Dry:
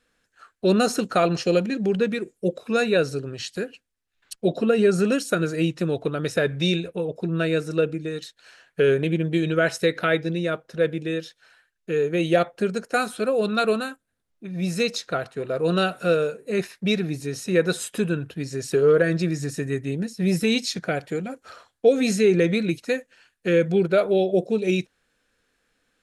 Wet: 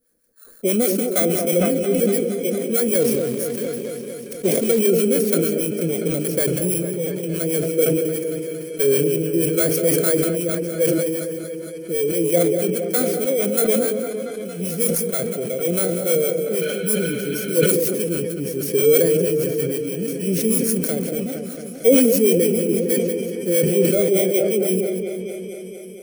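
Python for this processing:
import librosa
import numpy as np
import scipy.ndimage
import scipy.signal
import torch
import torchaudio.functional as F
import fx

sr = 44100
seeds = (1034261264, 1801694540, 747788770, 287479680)

p1 = fx.bit_reversed(x, sr, seeds[0], block=16)
p2 = fx.high_shelf(p1, sr, hz=5600.0, db=10.5)
p3 = fx.echo_feedback(p2, sr, ms=194, feedback_pct=29, wet_db=-13)
p4 = fx.harmonic_tremolo(p3, sr, hz=6.3, depth_pct=70, crossover_hz=620.0)
p5 = fx.graphic_eq(p4, sr, hz=(250, 500, 1000, 2000, 4000, 8000), db=(6, 10, -10, 6, -5, 5))
p6 = p5 + fx.echo_opening(p5, sr, ms=229, hz=750, octaves=1, feedback_pct=70, wet_db=-6, dry=0)
p7 = fx.quant_float(p6, sr, bits=2, at=(3.0, 4.79))
p8 = fx.spec_repair(p7, sr, seeds[1], start_s=16.64, length_s=0.99, low_hz=1300.0, high_hz=4200.0, source='after')
p9 = fx.sustainer(p8, sr, db_per_s=26.0)
y = p9 * librosa.db_to_amplitude(-4.5)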